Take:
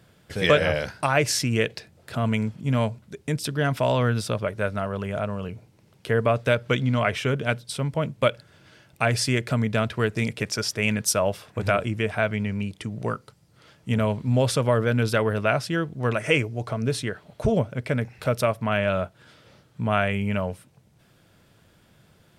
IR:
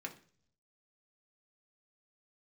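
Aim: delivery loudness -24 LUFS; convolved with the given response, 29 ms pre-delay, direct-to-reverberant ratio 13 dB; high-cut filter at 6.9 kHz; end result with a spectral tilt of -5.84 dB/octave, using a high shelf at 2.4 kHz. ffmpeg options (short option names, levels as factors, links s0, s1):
-filter_complex "[0:a]lowpass=6900,highshelf=f=2400:g=-6.5,asplit=2[s0][s1];[1:a]atrim=start_sample=2205,adelay=29[s2];[s1][s2]afir=irnorm=-1:irlink=0,volume=0.251[s3];[s0][s3]amix=inputs=2:normalize=0,volume=1.19"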